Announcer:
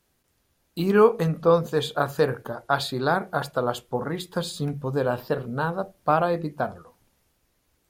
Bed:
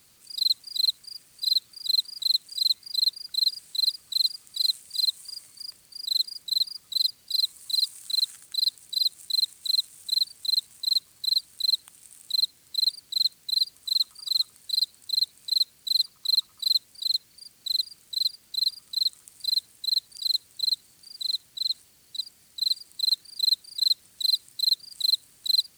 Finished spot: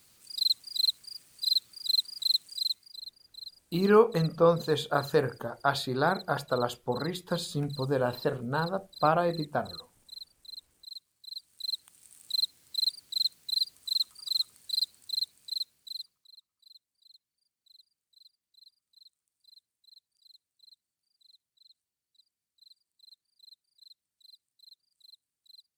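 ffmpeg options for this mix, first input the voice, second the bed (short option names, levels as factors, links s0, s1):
-filter_complex "[0:a]adelay=2950,volume=0.668[s0];[1:a]volume=4.47,afade=t=out:st=2.41:d=0.6:silence=0.133352,afade=t=in:st=11.27:d=0.99:silence=0.158489,afade=t=out:st=14.85:d=1.44:silence=0.0398107[s1];[s0][s1]amix=inputs=2:normalize=0"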